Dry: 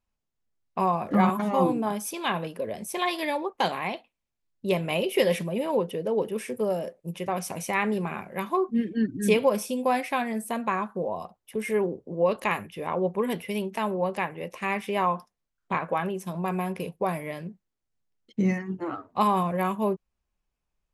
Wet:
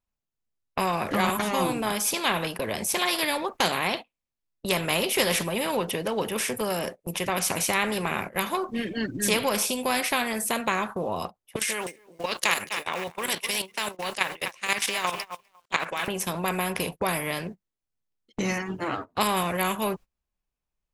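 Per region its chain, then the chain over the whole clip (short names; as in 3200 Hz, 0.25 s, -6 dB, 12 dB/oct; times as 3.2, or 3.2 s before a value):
11.56–16.08 weighting filter ITU-R 468 + level quantiser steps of 12 dB + lo-fi delay 0.251 s, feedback 35%, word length 8-bit, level -14.5 dB
whole clip: gate -39 dBFS, range -21 dB; spectral compressor 2:1; gain +3 dB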